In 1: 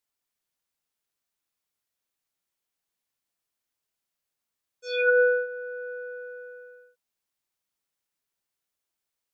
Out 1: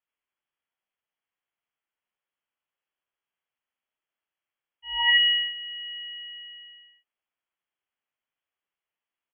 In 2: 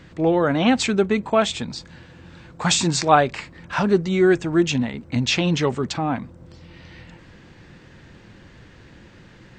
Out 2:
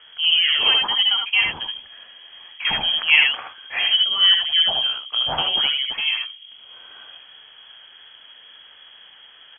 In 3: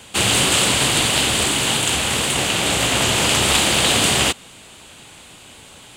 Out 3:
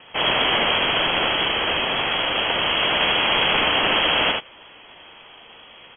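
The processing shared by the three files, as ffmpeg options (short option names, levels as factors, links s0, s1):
-filter_complex "[0:a]lowpass=f=2900:t=q:w=0.5098,lowpass=f=2900:t=q:w=0.6013,lowpass=f=2900:t=q:w=0.9,lowpass=f=2900:t=q:w=2.563,afreqshift=-3400,asplit=2[s0][s1];[s1]aecho=0:1:65|78:0.422|0.631[s2];[s0][s2]amix=inputs=2:normalize=0,volume=0.841"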